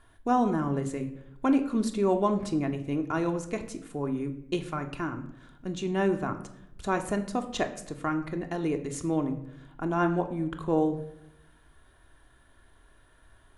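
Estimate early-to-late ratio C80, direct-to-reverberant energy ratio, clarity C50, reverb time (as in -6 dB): 14.5 dB, 5.0 dB, 12.0 dB, 0.80 s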